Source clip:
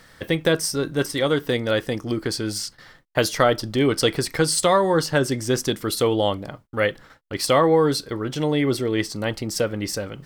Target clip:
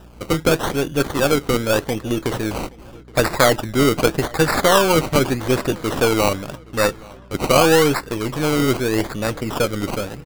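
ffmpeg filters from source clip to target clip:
-filter_complex "[0:a]aeval=exprs='if(lt(val(0),0),0.708*val(0),val(0))':c=same,acrusher=samples=20:mix=1:aa=0.000001:lfo=1:lforange=12:lforate=0.84,aeval=exprs='val(0)+0.00398*(sin(2*PI*60*n/s)+sin(2*PI*2*60*n/s)/2+sin(2*PI*3*60*n/s)/3+sin(2*PI*4*60*n/s)/4+sin(2*PI*5*60*n/s)/5)':c=same,asplit=2[s0][s1];[s1]adelay=822,lowpass=f=4800:p=1,volume=0.0668,asplit=2[s2][s3];[s3]adelay=822,lowpass=f=4800:p=1,volume=0.49,asplit=2[s4][s5];[s5]adelay=822,lowpass=f=4800:p=1,volume=0.49[s6];[s2][s4][s6]amix=inputs=3:normalize=0[s7];[s0][s7]amix=inputs=2:normalize=0,volume=1.68"

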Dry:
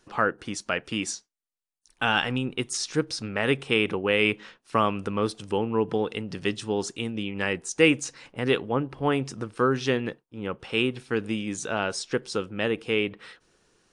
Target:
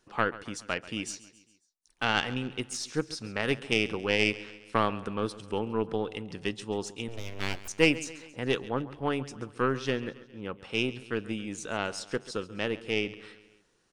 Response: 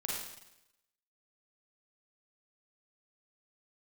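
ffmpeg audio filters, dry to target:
-filter_complex "[0:a]aeval=exprs='0.447*(cos(1*acos(clip(val(0)/0.447,-1,1)))-cos(1*PI/2))+0.0891*(cos(2*acos(clip(val(0)/0.447,-1,1)))-cos(2*PI/2))+0.0501*(cos(3*acos(clip(val(0)/0.447,-1,1)))-cos(3*PI/2))':c=same,asettb=1/sr,asplit=3[s0][s1][s2];[s0]atrim=end=7.084[s3];[s1]atrim=start=7.08:end=7.68,asetpts=PTS-STARTPTS,afade=t=in:d=0.004:c=qsin,afade=t=out:st=0.596:d=0.004:c=qsin,aeval=exprs='abs(val(0))':c=same[s4];[s2]atrim=start=7.676[s5];[s3][s4]acrossfade=d=0.004:c1=hsin:c2=qsin[s6];[s6][s5]acrossfade=d=0.004:c1=qsin:c2=hsin,aecho=1:1:136|272|408|544:0.133|0.0693|0.0361|0.0188,volume=0.75"

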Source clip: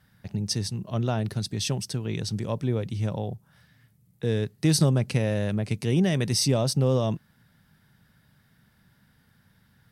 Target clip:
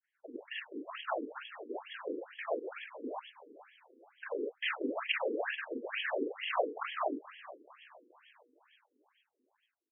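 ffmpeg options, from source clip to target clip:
-filter_complex "[0:a]aeval=exprs='val(0)*sin(2*PI*48*n/s)':c=same,aeval=exprs='0.15*(abs(mod(val(0)/0.15+3,4)-2)-1)':c=same,asplit=2[s0][s1];[s1]acompressor=threshold=0.0251:ratio=6,volume=1[s2];[s0][s2]amix=inputs=2:normalize=0,agate=range=0.0224:threshold=0.00631:ratio=3:detection=peak,afftfilt=real='hypot(re,im)*cos(2*PI*random(0))':imag='hypot(re,im)*sin(2*PI*random(1))':win_size=512:overlap=0.75,adynamicequalizer=threshold=0.00316:dfrequency=1200:dqfactor=0.92:tfrequency=1200:tqfactor=0.92:attack=5:release=100:ratio=0.375:range=2:mode=boostabove:tftype=bell,asplit=2[s3][s4];[s4]adelay=42,volume=0.794[s5];[s3][s5]amix=inputs=2:normalize=0,asplit=2[s6][s7];[s7]asplit=6[s8][s9][s10][s11][s12][s13];[s8]adelay=429,afreqshift=-47,volume=0.168[s14];[s9]adelay=858,afreqshift=-94,volume=0.0955[s15];[s10]adelay=1287,afreqshift=-141,volume=0.0543[s16];[s11]adelay=1716,afreqshift=-188,volume=0.0313[s17];[s12]adelay=2145,afreqshift=-235,volume=0.0178[s18];[s13]adelay=2574,afreqshift=-282,volume=0.0101[s19];[s14][s15][s16][s17][s18][s19]amix=inputs=6:normalize=0[s20];[s6][s20]amix=inputs=2:normalize=0,crystalizer=i=9:c=0,bandreject=f=60:t=h:w=6,bandreject=f=120:t=h:w=6,bandreject=f=180:t=h:w=6,bandreject=f=240:t=h:w=6,bandreject=f=300:t=h:w=6,bandreject=f=360:t=h:w=6,bandreject=f=420:t=h:w=6,bandreject=f=480:t=h:w=6,afftfilt=real='re*between(b*sr/1024,340*pow(2400/340,0.5+0.5*sin(2*PI*2.2*pts/sr))/1.41,340*pow(2400/340,0.5+0.5*sin(2*PI*2.2*pts/sr))*1.41)':imag='im*between(b*sr/1024,340*pow(2400/340,0.5+0.5*sin(2*PI*2.2*pts/sr))/1.41,340*pow(2400/340,0.5+0.5*sin(2*PI*2.2*pts/sr))*1.41)':win_size=1024:overlap=0.75"

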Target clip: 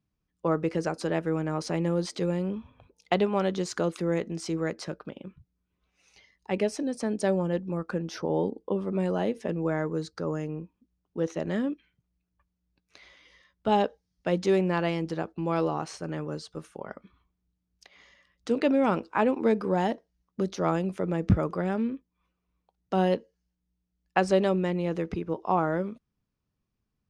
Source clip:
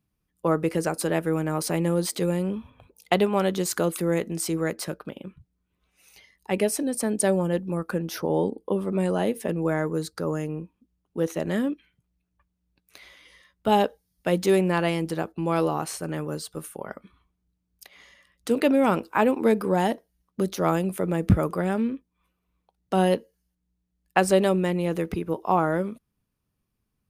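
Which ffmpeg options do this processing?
-af "lowpass=f=6000:t=q:w=1.9,highshelf=f=4000:g=-10.5,volume=0.708"

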